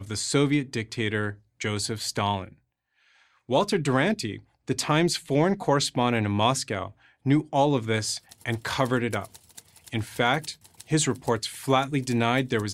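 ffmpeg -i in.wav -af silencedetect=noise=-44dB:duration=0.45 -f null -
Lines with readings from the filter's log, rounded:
silence_start: 2.53
silence_end: 3.49 | silence_duration: 0.96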